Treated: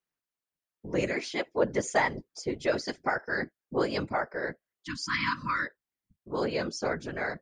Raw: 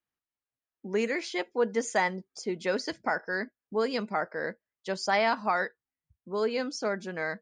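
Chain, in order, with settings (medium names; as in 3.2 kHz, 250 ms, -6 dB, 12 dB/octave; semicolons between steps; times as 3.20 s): whisper effect; spectral replace 4.78–5.64 s, 340–950 Hz both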